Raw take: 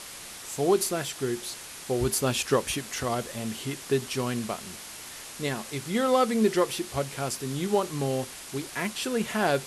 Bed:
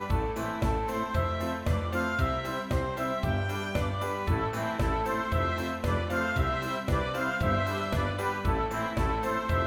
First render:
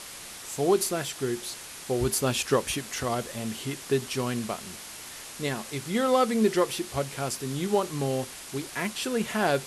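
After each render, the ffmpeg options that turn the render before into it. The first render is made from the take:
-af anull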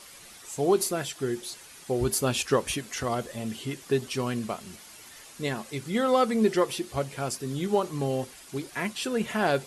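-af "afftdn=nr=9:nf=-42"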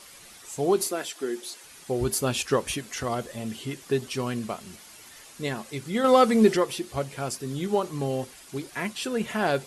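-filter_complex "[0:a]asettb=1/sr,asplit=3[s0][s1][s2];[s0]atrim=end=0.874[s3];[s1]atrim=start=0.87:end=1.64,asetpts=PTS-STARTPTS,afade=t=in:d=0.004:c=qsin,afade=t=out:st=0.766:d=0.004:c=qsin,highpass=f=240:w=0.5412,highpass=f=240:w=1.3066[s4];[s2]atrim=start=1.636[s5];[s3][s4]acrossfade=d=0.004:c1=hsin:c2=qsin[s6];[s6][s5]acrossfade=d=0.004:c1=qsin:c2=hsin,asettb=1/sr,asplit=3[s7][s8][s9];[s7]atrim=end=6.044[s10];[s8]atrim=start=6.04:end=6.57,asetpts=PTS-STARTPTS,afade=t=in:d=0.004:c=qsin,afade=t=out:st=0.526:d=0.004:c=qsin,acontrast=25[s11];[s9]atrim=start=6.566[s12];[s10][s11]acrossfade=d=0.004:c1=hsin:c2=qsin[s13];[s13][s12]acrossfade=d=0.004:c1=qsin:c2=hsin"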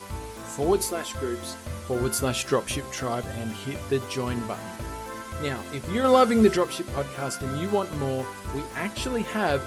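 -filter_complex "[1:a]volume=0.422[s0];[0:a][s0]amix=inputs=2:normalize=0"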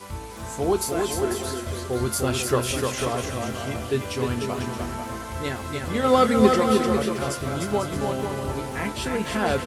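-filter_complex "[0:a]asplit=2[s0][s1];[s1]adelay=24,volume=0.251[s2];[s0][s2]amix=inputs=2:normalize=0,aecho=1:1:300|495|621.8|704.1|757.7:0.631|0.398|0.251|0.158|0.1"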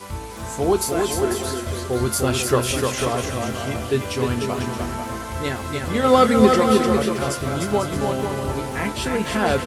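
-af "volume=1.5,alimiter=limit=0.891:level=0:latency=1"

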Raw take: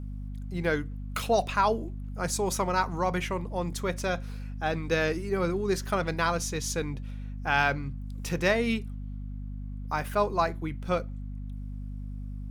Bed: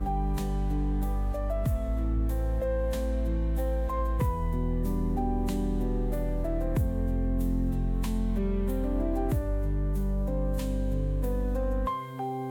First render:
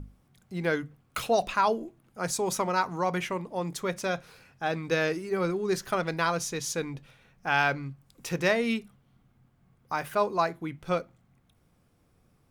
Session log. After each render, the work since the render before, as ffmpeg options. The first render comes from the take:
-af "bandreject=f=50:t=h:w=6,bandreject=f=100:t=h:w=6,bandreject=f=150:t=h:w=6,bandreject=f=200:t=h:w=6,bandreject=f=250:t=h:w=6"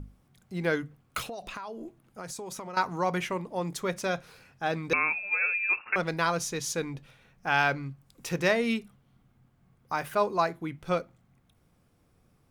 -filter_complex "[0:a]asettb=1/sr,asplit=3[s0][s1][s2];[s0]atrim=end=1.224[s3];[s1]atrim=start=1.22:end=2.77,asetpts=PTS-STARTPTS,afade=t=in:d=0.004:c=qsin,afade=t=out:st=1.546:d=0.004:c=qsin,acompressor=threshold=0.0178:ratio=16:attack=3.2:release=140:knee=1:detection=peak[s4];[s2]atrim=start=2.766[s5];[s3][s4]acrossfade=d=0.004:c1=hsin:c2=qsin[s6];[s6][s5]acrossfade=d=0.004:c1=qsin:c2=hsin,asettb=1/sr,asplit=3[s7][s8][s9];[s7]atrim=end=4.934[s10];[s8]atrim=start=4.93:end=5.96,asetpts=PTS-STARTPTS,afade=t=in:d=0.004:c=qsin,afade=t=out:st=1.026:d=0.004:c=qsin,lowpass=f=2400:t=q:w=0.5098,lowpass=f=2400:t=q:w=0.6013,lowpass=f=2400:t=q:w=0.9,lowpass=f=2400:t=q:w=2.563,afreqshift=-2800[s11];[s9]atrim=start=5.956[s12];[s10][s11]acrossfade=d=0.004:c1=hsin:c2=qsin[s13];[s13][s12]acrossfade=d=0.004:c1=qsin:c2=hsin"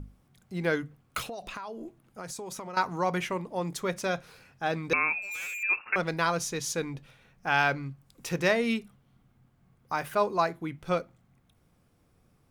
-filter_complex "[0:a]asettb=1/sr,asplit=3[s0][s1][s2];[s0]atrim=end=5.224[s3];[s1]atrim=start=5.22:end=5.63,asetpts=PTS-STARTPTS,afade=t=in:d=0.004:c=qsin,afade=t=out:st=0.406:d=0.004:c=qsin,volume=59.6,asoftclip=hard,volume=0.0168[s4];[s2]atrim=start=5.626[s5];[s3][s4]acrossfade=d=0.004:c1=hsin:c2=qsin[s6];[s6][s5]acrossfade=d=0.004:c1=qsin:c2=hsin"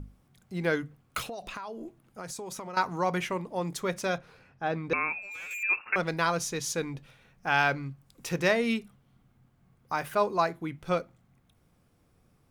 -filter_complex "[0:a]asettb=1/sr,asplit=3[s0][s1][s2];[s0]atrim=end=4.184[s3];[s1]atrim=start=4.18:end=5.51,asetpts=PTS-STARTPTS,afade=t=in:d=0.004:c=qsin,afade=t=out:st=1.326:d=0.004:c=qsin,lowpass=f=1900:p=1[s4];[s2]atrim=start=5.506[s5];[s3][s4]acrossfade=d=0.004:c1=hsin:c2=qsin[s6];[s6][s5]acrossfade=d=0.004:c1=qsin:c2=hsin"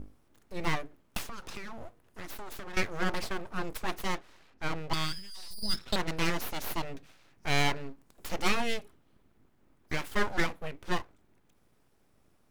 -af "aeval=exprs='abs(val(0))':c=same"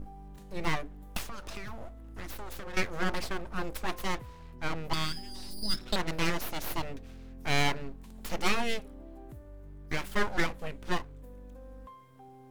-filter_complex "[1:a]volume=0.106[s0];[0:a][s0]amix=inputs=2:normalize=0"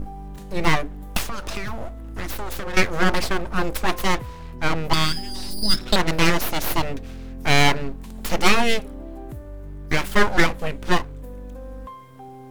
-af "volume=3.76,alimiter=limit=0.891:level=0:latency=1"

